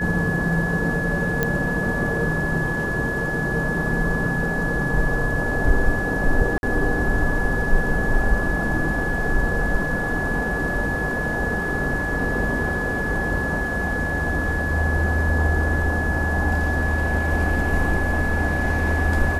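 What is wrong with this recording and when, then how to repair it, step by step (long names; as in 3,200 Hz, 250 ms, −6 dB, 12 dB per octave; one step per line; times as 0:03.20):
whistle 1,700 Hz −25 dBFS
0:01.43: click −7 dBFS
0:06.58–0:06.63: drop-out 51 ms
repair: click removal
notch filter 1,700 Hz, Q 30
repair the gap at 0:06.58, 51 ms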